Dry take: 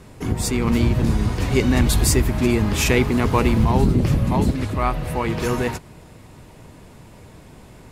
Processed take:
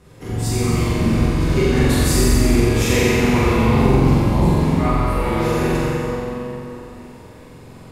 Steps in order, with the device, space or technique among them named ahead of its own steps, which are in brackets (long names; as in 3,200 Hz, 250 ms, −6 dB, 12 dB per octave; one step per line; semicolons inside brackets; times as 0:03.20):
tunnel (flutter between parallel walls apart 7.7 metres, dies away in 1.2 s; convolution reverb RT60 3.5 s, pre-delay 3 ms, DRR −6 dB)
level −8 dB